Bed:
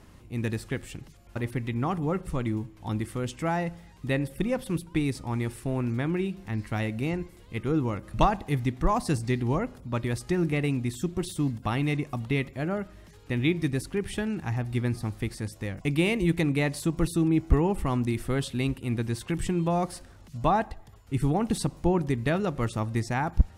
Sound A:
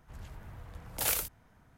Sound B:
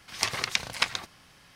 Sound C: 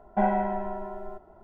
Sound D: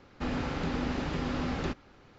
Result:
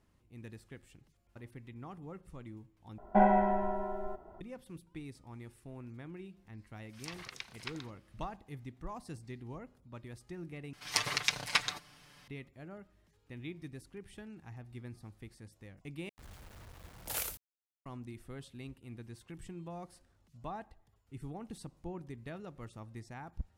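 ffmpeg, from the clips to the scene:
ffmpeg -i bed.wav -i cue0.wav -i cue1.wav -i cue2.wav -filter_complex "[2:a]asplit=2[link_01][link_02];[0:a]volume=-19dB[link_03];[link_01]acrossover=split=620|5900[link_04][link_05][link_06];[link_05]adelay=40[link_07];[link_04]adelay=120[link_08];[link_08][link_07][link_06]amix=inputs=3:normalize=0[link_09];[link_02]aecho=1:1:6.8:0.71[link_10];[1:a]acrusher=bits=7:mix=0:aa=0.000001[link_11];[link_03]asplit=4[link_12][link_13][link_14][link_15];[link_12]atrim=end=2.984[link_16];[3:a]atrim=end=1.43,asetpts=PTS-STARTPTS,volume=-0.5dB[link_17];[link_13]atrim=start=4.406:end=10.734[link_18];[link_10]atrim=end=1.55,asetpts=PTS-STARTPTS,volume=-5dB[link_19];[link_14]atrim=start=12.276:end=16.094[link_20];[link_11]atrim=end=1.77,asetpts=PTS-STARTPTS,volume=-7dB[link_21];[link_15]atrim=start=17.856[link_22];[link_09]atrim=end=1.55,asetpts=PTS-STARTPTS,volume=-16.5dB,afade=type=in:duration=0.004:curve=hsin,afade=type=out:start_time=1.546:duration=0.004:curve=hsin,adelay=6810[link_23];[link_16][link_17]acrossfade=duration=0.004:curve1=hsin:curve2=hsin[link_24];[link_24][link_18]acrossfade=duration=0.004:curve1=hsin:curve2=hsin[link_25];[link_25][link_19]acrossfade=duration=0.004:curve1=hsin:curve2=hsin[link_26];[link_26][link_20]acrossfade=duration=0.004:curve1=hsin:curve2=hsin[link_27];[link_27][link_21]acrossfade=duration=0.004:curve1=hsin:curve2=hsin[link_28];[link_28][link_22]acrossfade=duration=0.004:curve1=hsin:curve2=hsin[link_29];[link_29][link_23]amix=inputs=2:normalize=0" out.wav

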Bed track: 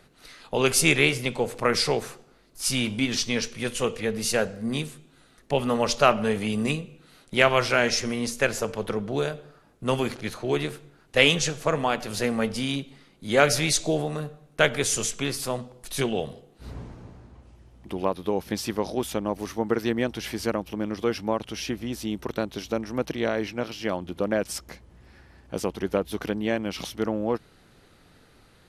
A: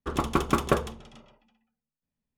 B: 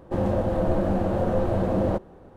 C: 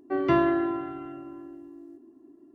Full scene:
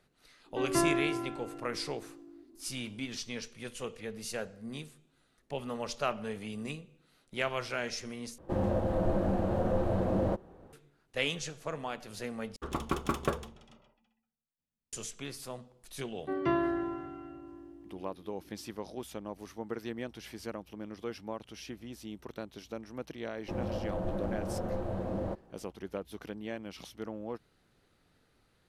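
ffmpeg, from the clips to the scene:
ffmpeg -i bed.wav -i cue0.wav -i cue1.wav -i cue2.wav -filter_complex "[3:a]asplit=2[link_01][link_02];[2:a]asplit=2[link_03][link_04];[0:a]volume=-13.5dB,asplit=3[link_05][link_06][link_07];[link_05]atrim=end=8.384[link_08];[link_03]atrim=end=2.35,asetpts=PTS-STARTPTS,volume=-6dB[link_09];[link_06]atrim=start=10.726:end=12.564[link_10];[1:a]atrim=end=2.37,asetpts=PTS-STARTPTS,volume=-7.5dB[link_11];[link_07]atrim=start=14.926[link_12];[link_01]atrim=end=2.54,asetpts=PTS-STARTPTS,volume=-6.5dB,afade=type=in:duration=0.004:curve=hsin,afade=type=out:start_time=2.536:duration=0.004:curve=hsin,adelay=460[link_13];[link_02]atrim=end=2.54,asetpts=PTS-STARTPTS,volume=-7dB,afade=type=in:duration=0.004:curve=hsin,afade=type=out:start_time=2.536:duration=0.004:curve=hsin,adelay=16170[link_14];[link_04]atrim=end=2.35,asetpts=PTS-STARTPTS,volume=-11.5dB,afade=type=in:duration=0.004:curve=hsin,afade=type=out:start_time=2.346:duration=0.004:curve=hsin,adelay=23370[link_15];[link_08][link_09]acrossfade=duration=0.004:curve1=hsin:curve2=hsin[link_16];[link_16][link_10]acrossfade=duration=0.004:curve1=hsin:curve2=hsin[link_17];[link_17][link_11]acrossfade=duration=0.004:curve1=hsin:curve2=hsin[link_18];[link_18][link_12]acrossfade=duration=0.004:curve1=hsin:curve2=hsin[link_19];[link_19][link_13][link_14][link_15]amix=inputs=4:normalize=0" out.wav

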